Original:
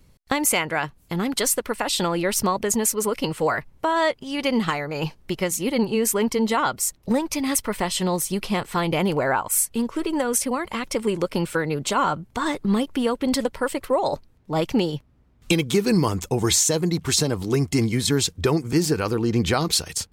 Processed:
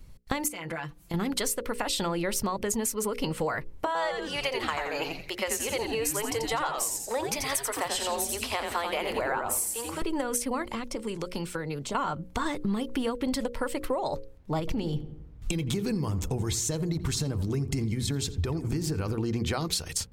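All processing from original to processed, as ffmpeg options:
-filter_complex "[0:a]asettb=1/sr,asplit=3[s0][s1][s2];[s0]atrim=end=0.484[s3];[s1]atrim=start=0.48:end=1.14,asetpts=PTS-STARTPTS,afade=t=in:d=0.004:c=qsin,afade=t=out:st=0.656:d=0.004:c=qsin,highpass=f=80:p=1,aecho=1:1:5.9:0.9,atrim=end_sample=29106,acompressor=threshold=0.0316:ratio=12:attack=3.2:release=140:knee=1:detection=peak[s4];[s2]atrim=start=1.136[s5];[s3][s4]acrossfade=d=0.004:c1=hsin:c2=qsin[s6];[s6][s5]acrossfade=d=0.004:c1=qsin:c2=hsin,asettb=1/sr,asplit=3[s7][s8][s9];[s7]atrim=end=3.864[s10];[s8]atrim=start=3.86:end=10.02,asetpts=PTS-STARTPTS,afade=t=in:d=0.004:c=qsin,afade=t=out:st=6.156:d=0.004:c=qsin,highpass=f=470:w=0.5412,highpass=f=470:w=1.3066,asplit=6[s11][s12][s13][s14][s15][s16];[s12]adelay=86,afreqshift=-150,volume=0.562[s17];[s13]adelay=172,afreqshift=-300,volume=0.214[s18];[s14]adelay=258,afreqshift=-450,volume=0.0813[s19];[s15]adelay=344,afreqshift=-600,volume=0.0309[s20];[s16]adelay=430,afreqshift=-750,volume=0.0117[s21];[s11][s17][s18][s19][s20][s21]amix=inputs=6:normalize=0,atrim=end_sample=271656[s22];[s9]atrim=start=10.016[s23];[s10][s22]acrossfade=d=0.004:c1=hsin:c2=qsin[s24];[s24][s23]acrossfade=d=0.004:c1=qsin:c2=hsin,asettb=1/sr,asplit=3[s25][s26][s27];[s25]atrim=end=10.624[s28];[s26]atrim=start=10.62:end=11.95,asetpts=PTS-STARTPTS,afade=t=in:d=0.004:c=qsin,afade=t=out:st=1.326:d=0.004:c=qsin,equalizer=f=5800:t=o:w=1.5:g=4.5,acrossover=split=120|1000[s29][s30][s31];[s29]acompressor=threshold=0.00316:ratio=4[s32];[s30]acompressor=threshold=0.0224:ratio=4[s33];[s31]acompressor=threshold=0.00891:ratio=4[s34];[s32][s33][s34]amix=inputs=3:normalize=0[s35];[s27]atrim=start=11.946[s36];[s28][s35]acrossfade=d=0.004:c1=hsin:c2=qsin[s37];[s37][s36]acrossfade=d=0.004:c1=qsin:c2=hsin,asettb=1/sr,asplit=3[s38][s39][s40];[s38]atrim=end=14.594[s41];[s39]atrim=start=14.59:end=19.18,asetpts=PTS-STARTPTS,afade=t=in:d=0.004:c=qsin,afade=t=out:st=4.586:d=0.004:c=qsin,lowshelf=f=210:g=9,acompressor=threshold=0.0794:ratio=3:attack=3.2:release=140:knee=1:detection=peak,asplit=2[s42][s43];[s43]adelay=85,lowpass=f=1900:p=1,volume=0.2,asplit=2[s44][s45];[s45]adelay=85,lowpass=f=1900:p=1,volume=0.49,asplit=2[s46][s47];[s47]adelay=85,lowpass=f=1900:p=1,volume=0.49,asplit=2[s48][s49];[s49]adelay=85,lowpass=f=1900:p=1,volume=0.49,asplit=2[s50][s51];[s51]adelay=85,lowpass=f=1900:p=1,volume=0.49[s52];[s42][s44][s46][s48][s50][s52]amix=inputs=6:normalize=0,atrim=end_sample=202419[s53];[s40]atrim=start=19.176[s54];[s41][s53]acrossfade=d=0.004:c1=hsin:c2=qsin[s55];[s55][s54]acrossfade=d=0.004:c1=qsin:c2=hsin,lowshelf=f=72:g=11,bandreject=f=60:t=h:w=6,bandreject=f=120:t=h:w=6,bandreject=f=180:t=h:w=6,bandreject=f=240:t=h:w=6,bandreject=f=300:t=h:w=6,bandreject=f=360:t=h:w=6,bandreject=f=420:t=h:w=6,bandreject=f=480:t=h:w=6,bandreject=f=540:t=h:w=6,acompressor=threshold=0.0501:ratio=6"

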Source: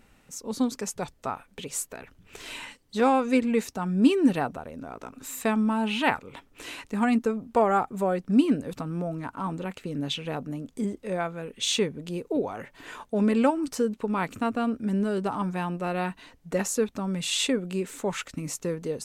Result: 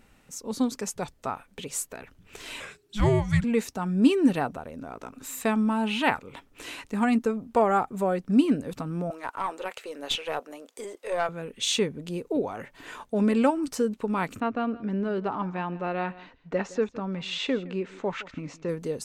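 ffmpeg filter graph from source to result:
-filter_complex "[0:a]asettb=1/sr,asplit=3[s0][s1][s2];[s0]atrim=end=2.604[s3];[s1]atrim=start=2.6:end=3.44,asetpts=PTS-STARTPTS,afade=t=in:d=0.004:c=qsin,afade=t=out:st=0.836:d=0.004:c=qsin,equalizer=f=180:t=o:w=0.37:g=-8,afreqshift=-420[s4];[s2]atrim=start=3.436[s5];[s3][s4]acrossfade=d=0.004:c1=hsin:c2=qsin[s6];[s6][s5]acrossfade=d=0.004:c1=qsin:c2=hsin,asettb=1/sr,asplit=3[s7][s8][s9];[s7]atrim=end=9.104[s10];[s8]atrim=start=9.1:end=11.29,asetpts=PTS-STARTPTS,afade=t=in:d=0.004:c=qsin,afade=t=out:st=2.186:d=0.004:c=qsin,highpass=f=450:w=0.5412,highpass=f=450:w=1.3066,acontrast=26,aeval=exprs='(tanh(7.08*val(0)+0.4)-tanh(0.4))/7.08':c=same[s11];[s9]atrim=start=11.286[s12];[s10][s11]acrossfade=d=0.004:c1=hsin:c2=qsin[s13];[s13][s12]acrossfade=d=0.004:c1=qsin:c2=hsin,asettb=1/sr,asplit=3[s14][s15][s16];[s14]atrim=end=14.404[s17];[s15]atrim=start=14.4:end=18.69,asetpts=PTS-STARTPTS,afade=t=in:d=0.004:c=qsin,afade=t=out:st=4.286:d=0.004:c=qsin,lowpass=f=6100:w=0.5412,lowpass=f=6100:w=1.3066,bass=f=250:g=-4,treble=f=4000:g=-12,aecho=1:1:165:0.112,atrim=end_sample=189189[s18];[s16]atrim=start=18.686[s19];[s17][s18]acrossfade=d=0.004:c1=hsin:c2=qsin[s20];[s20][s19]acrossfade=d=0.004:c1=qsin:c2=hsin"

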